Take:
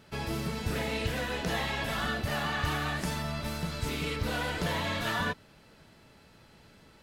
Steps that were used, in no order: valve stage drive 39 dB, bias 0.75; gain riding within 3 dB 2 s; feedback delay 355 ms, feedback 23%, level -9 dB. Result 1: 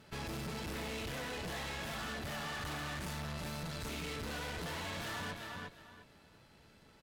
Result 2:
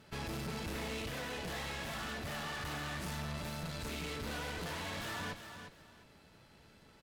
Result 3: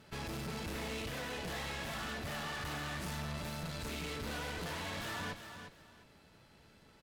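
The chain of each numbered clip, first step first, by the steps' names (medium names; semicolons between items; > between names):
gain riding > feedback delay > valve stage; valve stage > gain riding > feedback delay; gain riding > valve stage > feedback delay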